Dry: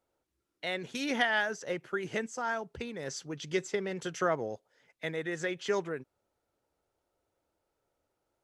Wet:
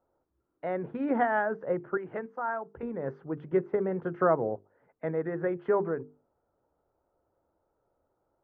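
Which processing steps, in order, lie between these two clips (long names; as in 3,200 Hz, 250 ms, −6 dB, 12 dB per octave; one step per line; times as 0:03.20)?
low-pass filter 1,300 Hz 24 dB per octave
mains-hum notches 50/100/150/200/250/300/350/400/450 Hz
0:01.97–0:02.83: low-shelf EQ 500 Hz −11.5 dB
level +6 dB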